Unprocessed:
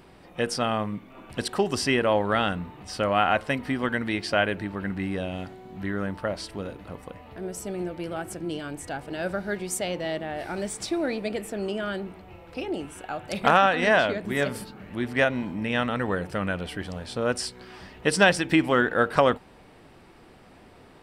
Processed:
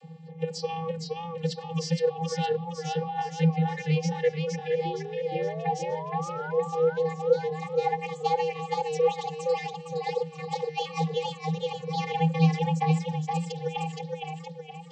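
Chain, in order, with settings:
gliding playback speed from 92% → 190%
reverb reduction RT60 1.8 s
compressor whose output falls as the input rises −27 dBFS, ratio −0.5
phaser with its sweep stopped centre 360 Hz, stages 6
hum removal 355.9 Hz, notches 15
channel vocoder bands 32, square 162 Hz
sound drawn into the spectrogram rise, 0:04.85–0:06.51, 340–1,500 Hz −43 dBFS
feedback echo with a swinging delay time 467 ms, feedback 46%, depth 82 cents, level −3 dB
level +4.5 dB

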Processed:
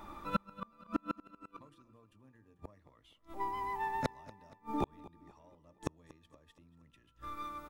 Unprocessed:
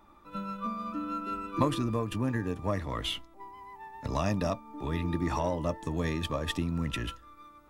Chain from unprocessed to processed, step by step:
mains-hum notches 60/120/180/240/300/360/420/480 Hz
gate with flip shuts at −28 dBFS, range −41 dB
on a send: repeating echo 236 ms, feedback 47%, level −19.5 dB
on the sum: level +9.5 dB

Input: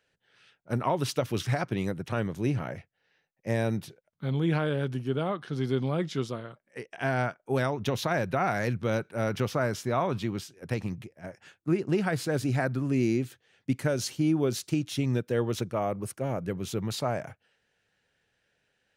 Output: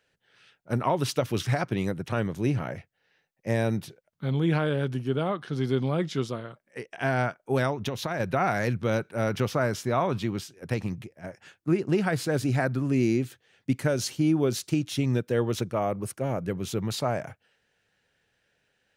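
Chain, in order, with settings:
0:07.71–0:08.20: downward compressor, threshold −29 dBFS, peak gain reduction 6.5 dB
level +2 dB

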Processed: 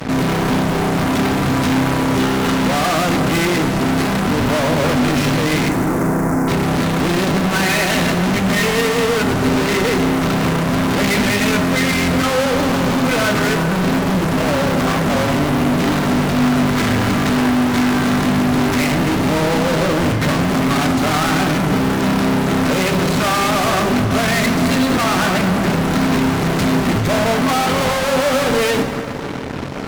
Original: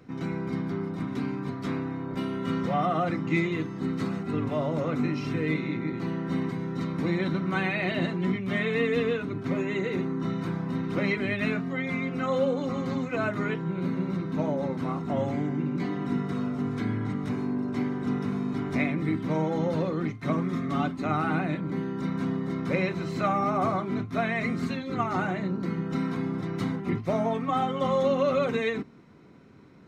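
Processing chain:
0:16.42–0:18.16: parametric band 1,700 Hz +5.5 dB 1.6 octaves
fuzz pedal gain 53 dB, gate −52 dBFS
0:05.69–0:06.48: Butterworth band-reject 3,400 Hz, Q 0.65
convolution reverb RT60 3.4 s, pre-delay 6 ms, DRR 6 dB
level −3 dB

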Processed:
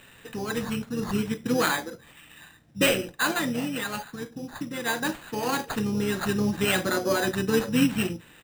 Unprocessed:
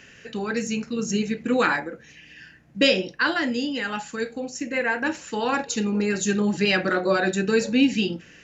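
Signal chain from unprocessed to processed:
gain on a spectral selection 0:04.04–0:04.86, 420–6,100 Hz −7 dB
bad sample-rate conversion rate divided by 8×, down none, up hold
pitch-shifted copies added −12 semitones −13 dB, −7 semitones −11 dB
level −3.5 dB

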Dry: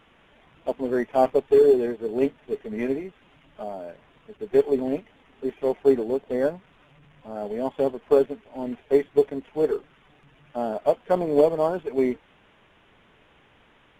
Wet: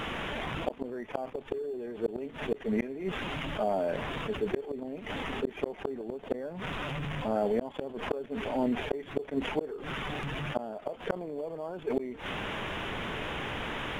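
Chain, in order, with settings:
gate with flip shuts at −19 dBFS, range −40 dB
envelope flattener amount 70%

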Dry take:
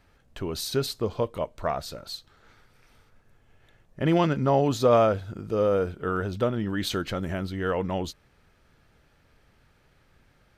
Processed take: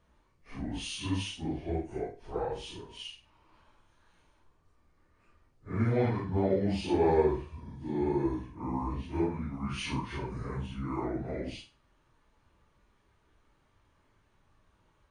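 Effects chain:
random phases in long frames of 100 ms
flutter between parallel walls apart 6.1 metres, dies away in 0.21 s
speed change −30%
level −6.5 dB

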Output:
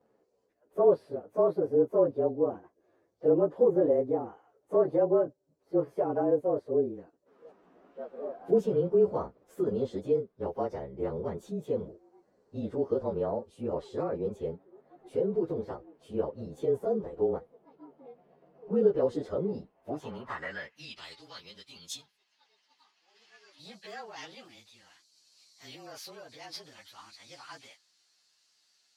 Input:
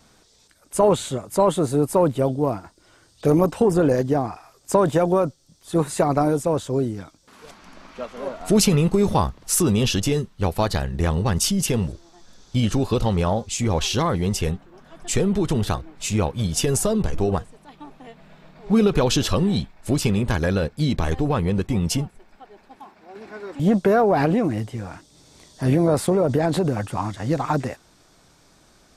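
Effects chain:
partials spread apart or drawn together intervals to 108%
band-pass filter sweep 460 Hz → 4,300 Hz, 0:19.68–0:21.15

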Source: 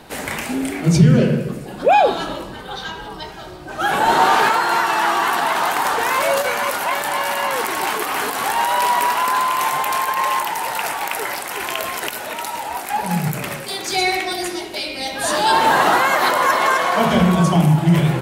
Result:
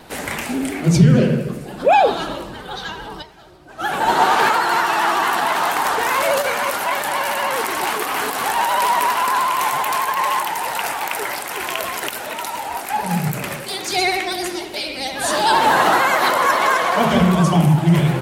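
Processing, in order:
pitch vibrato 13 Hz 65 cents
0:03.22–0:04.39: expander for the loud parts 1.5 to 1, over −32 dBFS

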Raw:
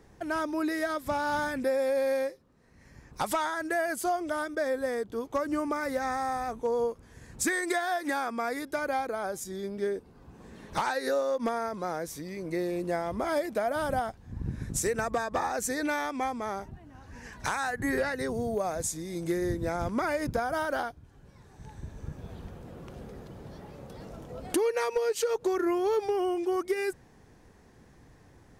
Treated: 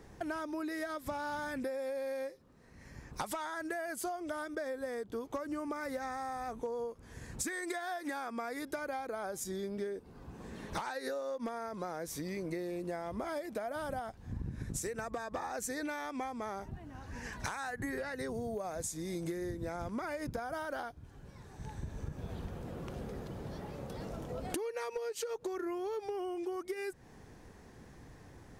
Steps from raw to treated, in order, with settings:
downward compressor 12 to 1, threshold −37 dBFS, peak gain reduction 14.5 dB
level +2 dB

